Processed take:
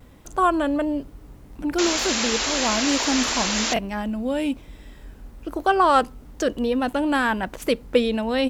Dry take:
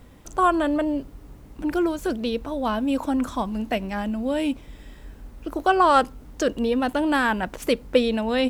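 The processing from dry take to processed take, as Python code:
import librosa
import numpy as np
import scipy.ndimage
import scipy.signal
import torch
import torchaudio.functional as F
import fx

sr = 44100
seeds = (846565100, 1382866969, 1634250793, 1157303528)

y = fx.vibrato(x, sr, rate_hz=1.1, depth_cents=45.0)
y = fx.spec_paint(y, sr, seeds[0], shape='noise', start_s=1.78, length_s=1.96, low_hz=210.0, high_hz=7500.0, level_db=-25.0)
y = fx.buffer_glitch(y, sr, at_s=(1.51, 3.74), block=1024, repeats=1)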